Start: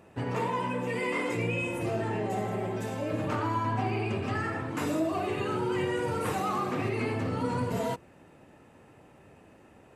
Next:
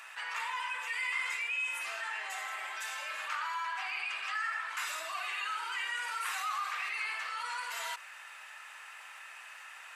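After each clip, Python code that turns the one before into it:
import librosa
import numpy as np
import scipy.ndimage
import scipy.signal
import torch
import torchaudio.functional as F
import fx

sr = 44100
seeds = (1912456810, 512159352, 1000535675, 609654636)

y = scipy.signal.sosfilt(scipy.signal.butter(4, 1300.0, 'highpass', fs=sr, output='sos'), x)
y = fx.high_shelf(y, sr, hz=8700.0, db=-5.0)
y = fx.env_flatten(y, sr, amount_pct=50)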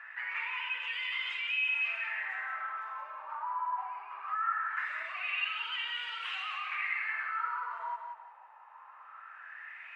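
y = fx.filter_lfo_lowpass(x, sr, shape='sine', hz=0.21, low_hz=900.0, high_hz=3200.0, q=5.6)
y = fx.echo_feedback(y, sr, ms=179, feedback_pct=31, wet_db=-6.0)
y = y * 10.0 ** (-8.0 / 20.0)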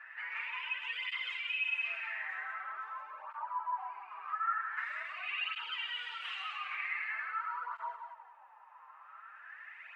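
y = fx.flanger_cancel(x, sr, hz=0.45, depth_ms=7.3)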